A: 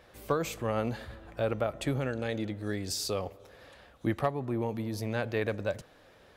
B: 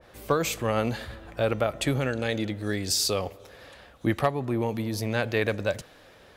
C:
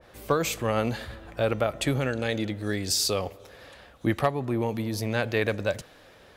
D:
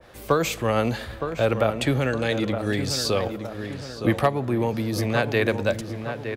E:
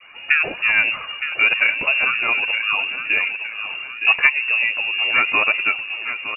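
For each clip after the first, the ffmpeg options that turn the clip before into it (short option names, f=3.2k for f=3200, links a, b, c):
-af "adynamicequalizer=threshold=0.00631:dfrequency=1700:dqfactor=0.7:tfrequency=1700:tqfactor=0.7:attack=5:release=100:ratio=0.375:range=2.5:mode=boostabove:tftype=highshelf,volume=4.5dB"
-af anull
-filter_complex "[0:a]acrossover=split=280|750|4600[a][b][c][d];[d]alimiter=level_in=4dB:limit=-24dB:level=0:latency=1:release=211,volume=-4dB[e];[a][b][c][e]amix=inputs=4:normalize=0,asplit=2[f][g];[g]adelay=915,lowpass=f=2.2k:p=1,volume=-8dB,asplit=2[h][i];[i]adelay=915,lowpass=f=2.2k:p=1,volume=0.51,asplit=2[j][k];[k]adelay=915,lowpass=f=2.2k:p=1,volume=0.51,asplit=2[l][m];[m]adelay=915,lowpass=f=2.2k:p=1,volume=0.51,asplit=2[n][o];[o]adelay=915,lowpass=f=2.2k:p=1,volume=0.51,asplit=2[p][q];[q]adelay=915,lowpass=f=2.2k:p=1,volume=0.51[r];[f][h][j][l][n][p][r]amix=inputs=7:normalize=0,volume=3.5dB"
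-af "flanger=delay=1.1:depth=3.4:regen=44:speed=0.79:shape=triangular,lowpass=f=2.5k:t=q:w=0.5098,lowpass=f=2.5k:t=q:w=0.6013,lowpass=f=2.5k:t=q:w=0.9,lowpass=f=2.5k:t=q:w=2.563,afreqshift=-2900,volume=8.5dB"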